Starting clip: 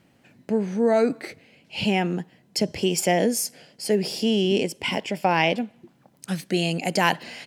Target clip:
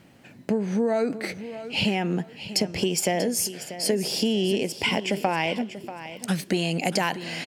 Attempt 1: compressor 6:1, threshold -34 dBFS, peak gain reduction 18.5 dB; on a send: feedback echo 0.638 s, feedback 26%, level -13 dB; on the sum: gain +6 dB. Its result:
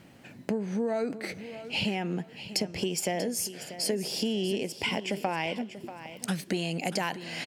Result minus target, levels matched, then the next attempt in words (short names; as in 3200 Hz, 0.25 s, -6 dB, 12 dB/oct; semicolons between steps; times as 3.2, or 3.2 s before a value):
compressor: peak gain reduction +6 dB
compressor 6:1, threshold -27 dBFS, peak gain reduction 12.5 dB; on a send: feedback echo 0.638 s, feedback 26%, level -13 dB; on the sum: gain +6 dB